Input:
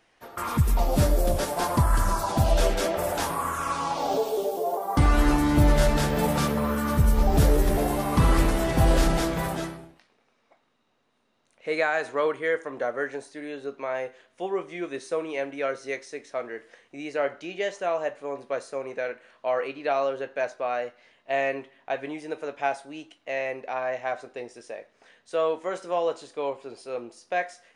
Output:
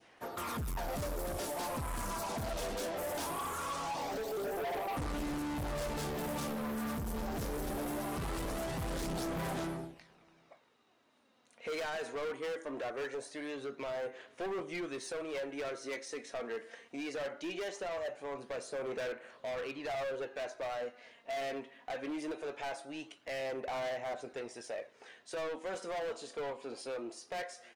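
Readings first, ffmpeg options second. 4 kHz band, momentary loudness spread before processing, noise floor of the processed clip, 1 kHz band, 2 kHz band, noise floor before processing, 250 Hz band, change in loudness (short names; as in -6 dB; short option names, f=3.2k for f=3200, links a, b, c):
-8.5 dB, 14 LU, -65 dBFS, -11.5 dB, -11.0 dB, -68 dBFS, -12.0 dB, -12.5 dB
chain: -filter_complex "[0:a]highpass=f=120:p=1,adynamicequalizer=threshold=0.0112:dfrequency=1700:dqfactor=0.71:tfrequency=1700:tqfactor=0.71:attack=5:release=100:ratio=0.375:range=2.5:mode=cutabove:tftype=bell,asplit=2[a][b];[b]acompressor=threshold=-35dB:ratio=6,volume=3dB[c];[a][c]amix=inputs=2:normalize=0,asoftclip=type=tanh:threshold=-26dB,aphaser=in_gain=1:out_gain=1:delay=4.4:decay=0.37:speed=0.21:type=sinusoidal,asoftclip=type=hard:threshold=-28dB,asplit=2[d][e];[e]adelay=641.4,volume=-29dB,highshelf=f=4k:g=-14.4[f];[d][f]amix=inputs=2:normalize=0,volume=-7dB"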